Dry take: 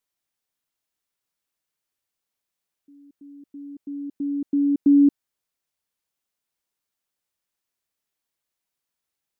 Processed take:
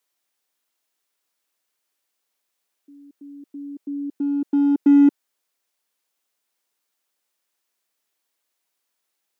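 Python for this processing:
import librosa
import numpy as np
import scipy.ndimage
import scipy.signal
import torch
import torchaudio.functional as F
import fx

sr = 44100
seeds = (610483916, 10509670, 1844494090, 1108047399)

p1 = np.clip(10.0 ** (24.5 / 20.0) * x, -1.0, 1.0) / 10.0 ** (24.5 / 20.0)
p2 = x + (p1 * 10.0 ** (-8.5 / 20.0))
p3 = scipy.signal.sosfilt(scipy.signal.butter(2, 280.0, 'highpass', fs=sr, output='sos'), p2)
y = p3 * 10.0 ** (4.0 / 20.0)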